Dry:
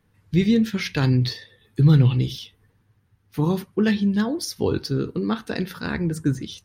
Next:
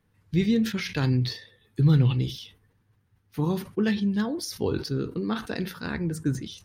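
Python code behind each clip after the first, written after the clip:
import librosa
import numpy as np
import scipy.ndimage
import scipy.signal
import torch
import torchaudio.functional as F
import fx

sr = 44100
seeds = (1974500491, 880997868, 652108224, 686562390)

y = fx.sustainer(x, sr, db_per_s=140.0)
y = y * librosa.db_to_amplitude(-4.5)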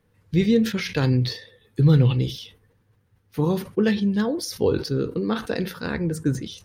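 y = fx.peak_eq(x, sr, hz=500.0, db=7.5, octaves=0.44)
y = y * librosa.db_to_amplitude(3.0)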